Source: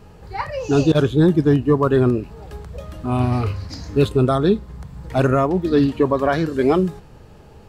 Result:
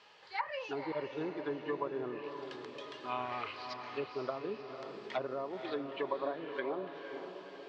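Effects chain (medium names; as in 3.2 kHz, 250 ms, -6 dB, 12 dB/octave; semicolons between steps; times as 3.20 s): differentiator; low-pass that closes with the level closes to 490 Hz, closed at -35 dBFS; cabinet simulation 160–4500 Hz, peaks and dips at 180 Hz -5 dB, 260 Hz -3 dB, 580 Hz +4 dB, 1 kHz +6 dB, 1.9 kHz +8 dB, 3.2 kHz +5 dB; band-stop 1.9 kHz, Q 18; on a send: echo that smears into a reverb 514 ms, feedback 52%, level -7 dB; on the sum: trim +4.5 dB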